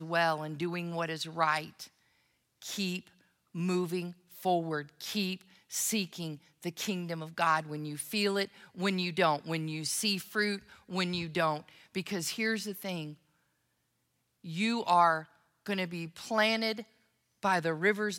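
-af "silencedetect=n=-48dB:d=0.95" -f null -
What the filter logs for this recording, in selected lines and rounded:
silence_start: 13.14
silence_end: 14.44 | silence_duration: 1.30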